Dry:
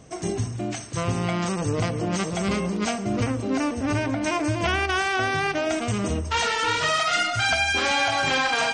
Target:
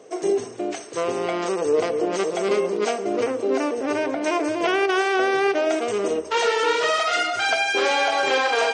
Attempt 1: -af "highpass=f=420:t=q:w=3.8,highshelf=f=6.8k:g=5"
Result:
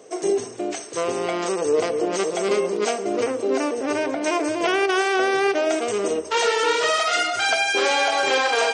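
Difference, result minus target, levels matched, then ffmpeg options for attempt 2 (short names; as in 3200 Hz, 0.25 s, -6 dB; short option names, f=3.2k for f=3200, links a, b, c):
8000 Hz band +4.0 dB
-af "highpass=f=420:t=q:w=3.8,highshelf=f=6.8k:g=-4.5"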